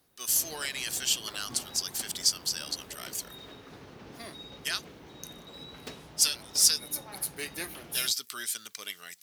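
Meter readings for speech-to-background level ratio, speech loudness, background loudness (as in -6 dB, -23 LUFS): 18.5 dB, -29.0 LUFS, -47.5 LUFS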